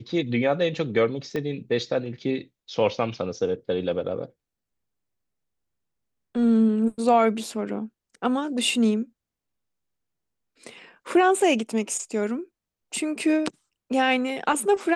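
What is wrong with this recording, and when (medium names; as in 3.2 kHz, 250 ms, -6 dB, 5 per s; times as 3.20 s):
1.36 s: pop -17 dBFS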